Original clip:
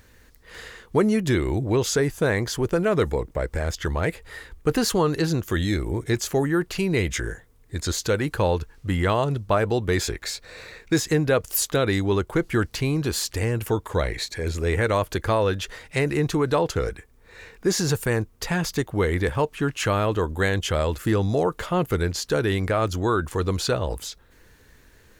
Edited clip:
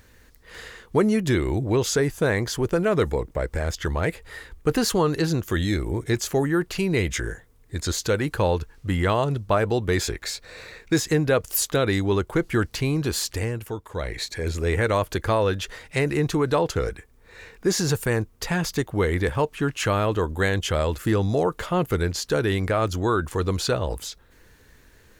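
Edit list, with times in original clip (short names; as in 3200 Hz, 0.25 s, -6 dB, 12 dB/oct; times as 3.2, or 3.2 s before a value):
13.32–14.27 dip -8 dB, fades 0.33 s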